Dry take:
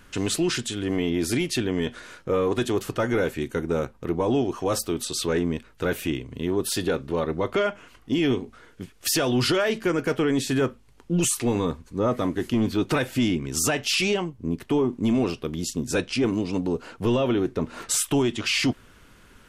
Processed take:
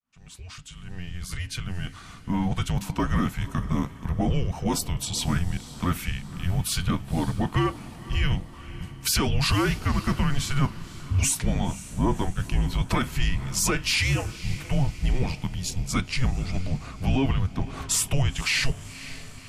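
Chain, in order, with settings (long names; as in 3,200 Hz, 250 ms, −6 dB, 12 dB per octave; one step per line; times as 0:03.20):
fade in at the beginning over 3.12 s
feedback delay with all-pass diffusion 524 ms, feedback 50%, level −15.5 dB
frequency shifter −270 Hz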